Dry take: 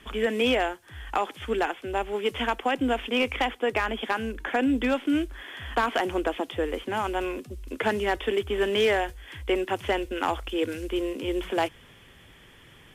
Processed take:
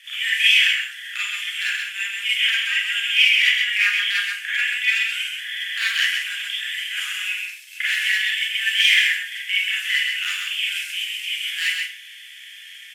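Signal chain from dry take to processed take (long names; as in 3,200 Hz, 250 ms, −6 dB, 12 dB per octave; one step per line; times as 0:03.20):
Butterworth high-pass 1,800 Hz 48 dB per octave
high-shelf EQ 6,800 Hz −3 dB
floating-point word with a short mantissa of 8 bits
on a send: single-tap delay 130 ms −4.5 dB
on the sum: four-comb reverb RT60 0.38 s, combs from 31 ms, DRR −6.5 dB
level +7.5 dB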